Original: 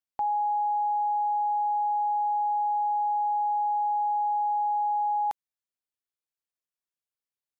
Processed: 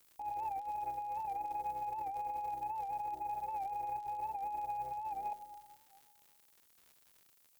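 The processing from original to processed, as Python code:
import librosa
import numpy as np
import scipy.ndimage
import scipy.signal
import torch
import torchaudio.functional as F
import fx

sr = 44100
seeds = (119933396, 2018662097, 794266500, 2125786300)

y = fx.cvsd(x, sr, bps=16000)
y = scipy.signal.sosfilt(scipy.signal.cheby1(5, 1.0, 840.0, 'lowpass', fs=sr, output='sos'), y)
y = fx.echo_heads(y, sr, ms=112, heads='first and second', feedback_pct=42, wet_db=-14.0)
y = fx.chorus_voices(y, sr, voices=4, hz=0.59, base_ms=15, depth_ms=2.4, mix_pct=65)
y = fx.dmg_noise_colour(y, sr, seeds[0], colour='violet', level_db=-64.0)
y = fx.over_compress(y, sr, threshold_db=-34.0, ratio=-1.0)
y = fx.dmg_crackle(y, sr, seeds[1], per_s=150.0, level_db=-45.0)
y = fx.cheby_harmonics(y, sr, harmonics=(7,), levels_db=(-25,), full_scale_db=-16.5)
y = fx.record_warp(y, sr, rpm=78.0, depth_cents=100.0)
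y = y * librosa.db_to_amplitude(-1.5)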